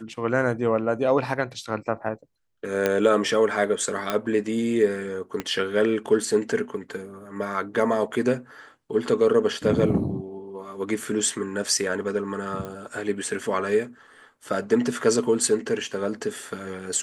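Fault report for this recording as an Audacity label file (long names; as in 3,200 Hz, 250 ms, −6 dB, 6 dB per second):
2.860000	2.860000	click −8 dBFS
4.100000	4.100000	click −10 dBFS
5.400000	5.400000	click −14 dBFS
12.650000	12.650000	click −21 dBFS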